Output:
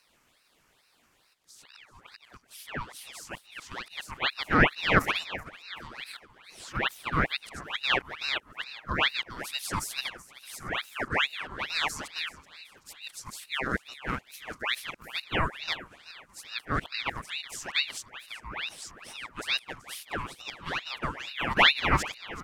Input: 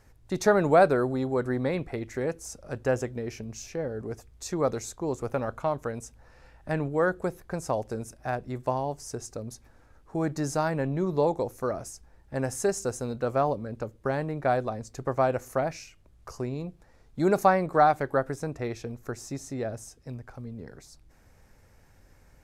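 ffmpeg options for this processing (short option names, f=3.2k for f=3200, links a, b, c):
-filter_complex "[0:a]areverse,asplit=2[a][b];[b]asetrate=55563,aresample=44100,atempo=0.793701,volume=-7dB[c];[a][c]amix=inputs=2:normalize=0,highpass=f=510:w=0.5412,highpass=f=510:w=1.3066,aecho=1:1:380|760|1140|1520|1900:0.141|0.0749|0.0397|0.021|0.0111,aeval=exprs='val(0)*sin(2*PI*1900*n/s+1900*0.75/2.3*sin(2*PI*2.3*n/s))':c=same,volume=1.5dB"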